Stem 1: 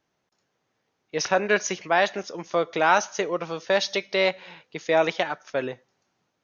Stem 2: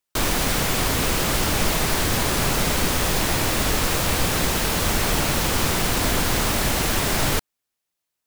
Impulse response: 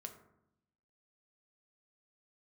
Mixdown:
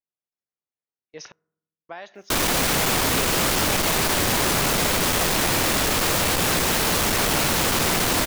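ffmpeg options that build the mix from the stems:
-filter_complex "[0:a]acompressor=threshold=-22dB:ratio=6,agate=range=-17dB:threshold=-44dB:ratio=16:detection=peak,volume=-12dB,asplit=3[a][b][c];[a]atrim=end=1.32,asetpts=PTS-STARTPTS,afade=t=out:st=1.316:d=0.004:c=hsin[d];[b]atrim=start=1.32:end=1.89,asetpts=PTS-STARTPTS,volume=0[e];[c]atrim=start=1.89,asetpts=PTS-STARTPTS,afade=t=in:d=0.004:c=hsin[f];[d][e][f]concat=n=3:v=0:a=1,asplit=2[g][h];[h]volume=-17dB[i];[1:a]asoftclip=type=tanh:threshold=-20.5dB,acontrast=80,lowshelf=f=100:g=-10,adelay=2150,volume=-1.5dB[j];[2:a]atrim=start_sample=2205[k];[i][k]afir=irnorm=-1:irlink=0[l];[g][j][l]amix=inputs=3:normalize=0"

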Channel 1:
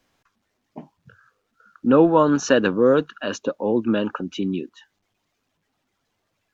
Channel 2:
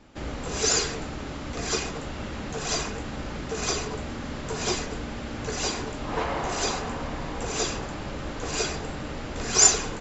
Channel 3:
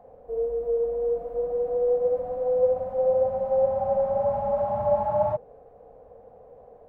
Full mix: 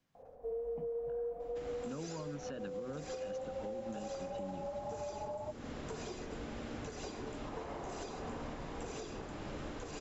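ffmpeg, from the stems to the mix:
-filter_complex "[0:a]equalizer=f=150:w=1.5:g=14,volume=-14.5dB[a];[1:a]equalizer=f=390:t=o:w=1.7:g=4,bandreject=f=4.5k:w=26,adelay=1400,volume=-10dB[b];[2:a]adelay=150,volume=-6dB[c];[a][b][c]amix=inputs=3:normalize=0,bandreject=f=60.98:t=h:w=4,bandreject=f=121.96:t=h:w=4,bandreject=f=182.94:t=h:w=4,bandreject=f=243.92:t=h:w=4,bandreject=f=304.9:t=h:w=4,bandreject=f=365.88:t=h:w=4,bandreject=f=426.86:t=h:w=4,bandreject=f=487.84:t=h:w=4,bandreject=f=548.82:t=h:w=4,acrossover=split=840|5400[d][e][f];[d]acompressor=threshold=-36dB:ratio=4[g];[e]acompressor=threshold=-48dB:ratio=4[h];[f]acompressor=threshold=-57dB:ratio=4[i];[g][h][i]amix=inputs=3:normalize=0,alimiter=level_in=9dB:limit=-24dB:level=0:latency=1:release=258,volume=-9dB"

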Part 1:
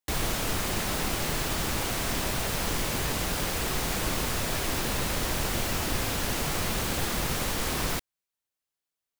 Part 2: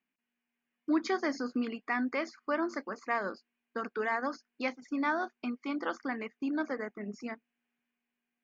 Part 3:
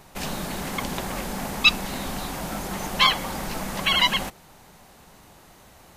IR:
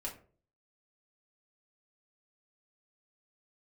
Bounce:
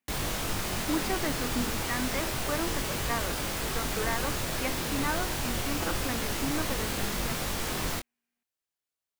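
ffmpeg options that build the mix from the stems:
-filter_complex "[0:a]flanger=delay=20:depth=5:speed=0.29,volume=0.5dB[a];[1:a]volume=-1.5dB[b];[a][b]amix=inputs=2:normalize=0"

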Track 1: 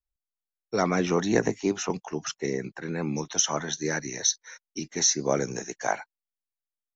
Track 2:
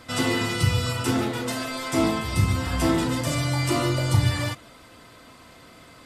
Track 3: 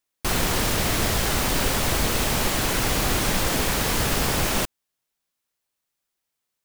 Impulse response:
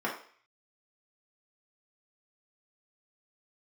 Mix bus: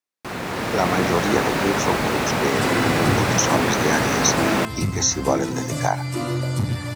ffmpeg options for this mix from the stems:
-filter_complex "[0:a]equalizer=f=870:t=o:w=0.72:g=8.5,acrusher=bits=7:mix=0:aa=0.5,volume=1dB[a];[1:a]lowshelf=f=200:g=10,aeval=exprs='clip(val(0),-1,0.2)':c=same,adelay=2450,volume=-6dB[b];[2:a]acrossover=split=3200[c][d];[d]acompressor=threshold=-34dB:ratio=4:attack=1:release=60[e];[c][e]amix=inputs=2:normalize=0,highshelf=f=7.6k:g=-9,dynaudnorm=f=140:g=9:m=11.5dB,volume=-4dB[f];[a][b]amix=inputs=2:normalize=0,dynaudnorm=f=230:g=13:m=11.5dB,alimiter=limit=-7dB:level=0:latency=1:release=491,volume=0dB[g];[f][g]amix=inputs=2:normalize=0,highpass=130,equalizer=f=3.1k:w=4.7:g=-4"

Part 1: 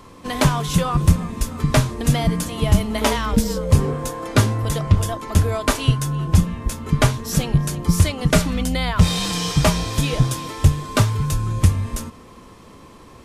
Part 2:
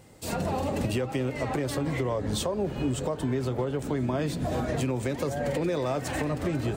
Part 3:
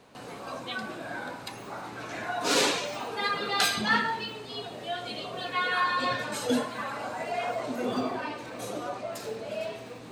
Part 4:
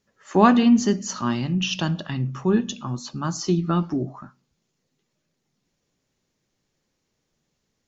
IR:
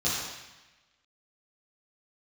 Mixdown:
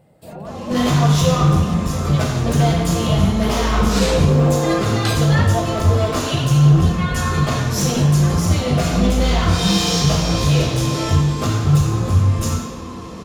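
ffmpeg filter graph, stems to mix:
-filter_complex "[0:a]alimiter=limit=-14dB:level=0:latency=1:release=358,asoftclip=type=hard:threshold=-25dB,adelay=450,volume=2dB,asplit=2[a][b];[b]volume=-4dB[c];[1:a]alimiter=level_in=2dB:limit=-24dB:level=0:latency=1:release=49,volume=-2dB,equalizer=f=160:t=o:w=0.67:g=12,equalizer=f=630:t=o:w=0.67:g=12,equalizer=f=6.3k:t=o:w=0.67:g=-11,volume=-7dB[d];[2:a]adelay=1450,volume=0.5dB[e];[3:a]alimiter=limit=-13.5dB:level=0:latency=1,volume=-16dB[f];[4:a]atrim=start_sample=2205[g];[c][g]afir=irnorm=-1:irlink=0[h];[a][d][e][f][h]amix=inputs=5:normalize=0"

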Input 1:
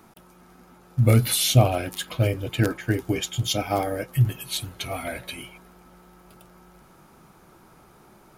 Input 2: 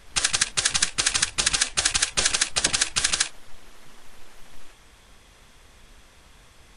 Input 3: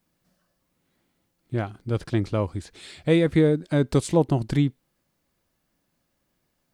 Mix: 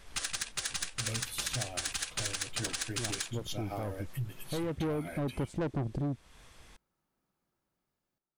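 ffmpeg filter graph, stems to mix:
-filter_complex "[0:a]agate=range=-28dB:threshold=-42dB:ratio=16:detection=peak,dynaudnorm=f=180:g=9:m=12.5dB,volume=-17dB,asplit=2[a][b];[1:a]volume=-4dB[c];[2:a]afwtdn=0.0224,asoftclip=type=tanh:threshold=-20dB,adelay=1450,volume=3dB[d];[b]apad=whole_len=360801[e];[d][e]sidechaincompress=threshold=-34dB:ratio=8:attack=16:release=820[f];[a][c][f]amix=inputs=3:normalize=0,asoftclip=type=tanh:threshold=-16dB,acompressor=threshold=-38dB:ratio=2"

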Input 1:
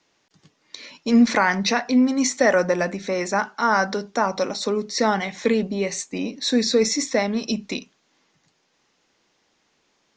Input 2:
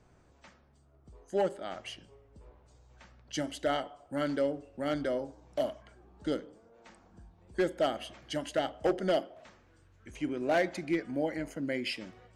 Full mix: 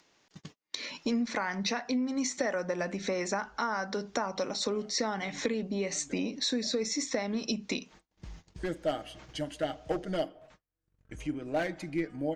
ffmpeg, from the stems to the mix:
-filter_complex "[0:a]acompressor=threshold=-30dB:ratio=6,volume=1dB,asplit=2[a][b];[1:a]lowshelf=f=97:g=12,aecho=1:1:6.5:0.51,adelay=1050,volume=-4.5dB[c];[b]apad=whole_len=591568[d];[c][d]sidechaincompress=threshold=-57dB:ratio=6:attack=41:release=119[e];[a][e]amix=inputs=2:normalize=0,agate=range=-43dB:threshold=-54dB:ratio=16:detection=peak,acompressor=mode=upward:threshold=-36dB:ratio=2.5"

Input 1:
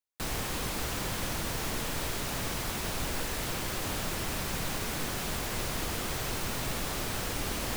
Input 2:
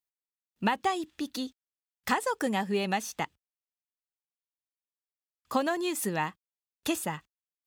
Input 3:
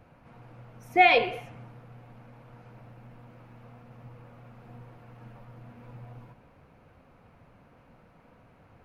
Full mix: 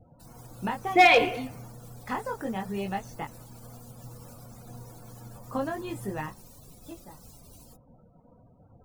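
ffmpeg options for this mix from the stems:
-filter_complex "[0:a]highshelf=f=4.4k:g=10.5,alimiter=level_in=0.5dB:limit=-24dB:level=0:latency=1:release=215,volume=-0.5dB,acrossover=split=230|3000[a][b][c];[b]acompressor=threshold=-46dB:ratio=6[d];[a][d][c]amix=inputs=3:normalize=0,volume=-12dB[e];[1:a]highshelf=f=2.6k:g=-12,flanger=delay=20:depth=4.2:speed=0.31,volume=0.5dB[f];[2:a]acontrast=26,asoftclip=type=hard:threshold=-9dB,volume=-2.5dB,asplit=2[g][h];[h]apad=whole_len=337822[i];[f][i]sidechaingate=range=-12dB:threshold=-49dB:ratio=16:detection=peak[j];[e][j][g]amix=inputs=3:normalize=0,afftdn=nr=35:nf=-51"

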